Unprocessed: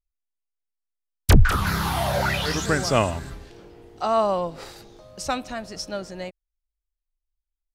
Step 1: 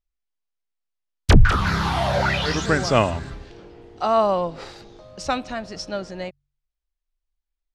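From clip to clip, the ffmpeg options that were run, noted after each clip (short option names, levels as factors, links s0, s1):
-af "lowpass=5500,bandreject=f=47.03:t=h:w=4,bandreject=f=94.06:t=h:w=4,bandreject=f=141.09:t=h:w=4,volume=1.33"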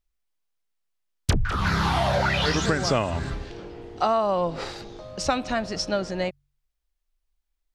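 -af "acompressor=threshold=0.0708:ratio=16,volume=1.68"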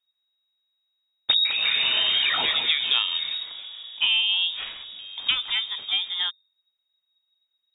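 -af "lowpass=f=3200:t=q:w=0.5098,lowpass=f=3200:t=q:w=0.6013,lowpass=f=3200:t=q:w=0.9,lowpass=f=3200:t=q:w=2.563,afreqshift=-3800"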